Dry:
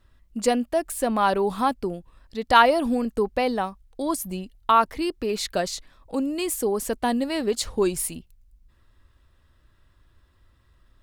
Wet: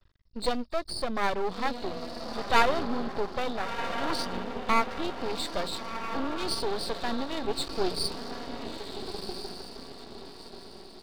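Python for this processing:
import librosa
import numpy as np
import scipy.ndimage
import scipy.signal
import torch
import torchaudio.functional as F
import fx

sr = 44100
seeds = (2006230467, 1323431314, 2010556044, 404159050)

y = fx.freq_compress(x, sr, knee_hz=3500.0, ratio=4.0)
y = fx.echo_diffused(y, sr, ms=1387, feedback_pct=41, wet_db=-7)
y = np.maximum(y, 0.0)
y = F.gain(torch.from_numpy(y), -2.5).numpy()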